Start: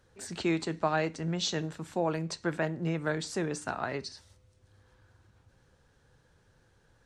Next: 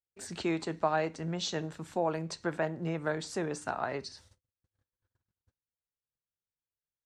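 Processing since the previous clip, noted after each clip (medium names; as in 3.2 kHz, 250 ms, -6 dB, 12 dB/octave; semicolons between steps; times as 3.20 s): gate -57 dBFS, range -39 dB; dynamic bell 760 Hz, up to +6 dB, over -40 dBFS, Q 0.74; in parallel at -2 dB: compression, threshold -34 dBFS, peak gain reduction 15.5 dB; on the sum: trim -6.5 dB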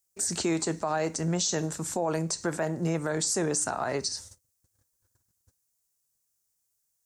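resonant high shelf 4.7 kHz +12.5 dB, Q 1.5; peak limiter -25.5 dBFS, peak gain reduction 10.5 dB; trim +7 dB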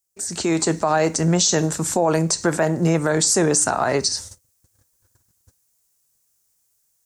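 level rider gain up to 10 dB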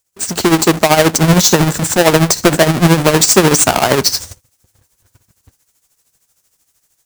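square wave that keeps the level; tremolo 13 Hz, depth 67%; trim +7.5 dB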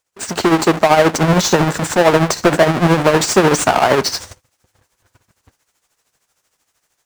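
overdrive pedal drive 10 dB, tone 1.7 kHz, clips at -1 dBFS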